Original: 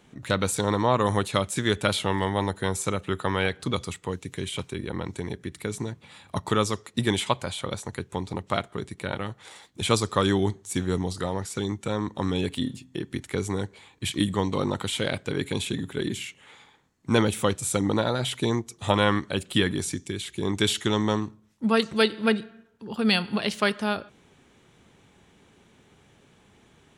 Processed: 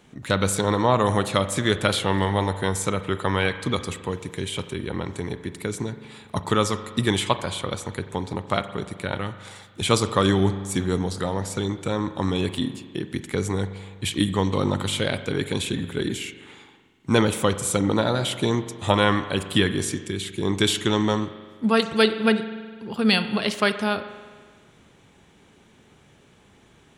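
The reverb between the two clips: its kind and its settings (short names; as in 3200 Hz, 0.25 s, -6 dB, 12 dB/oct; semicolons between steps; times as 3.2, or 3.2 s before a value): spring tank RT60 1.7 s, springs 41 ms, chirp 30 ms, DRR 11 dB; gain +2.5 dB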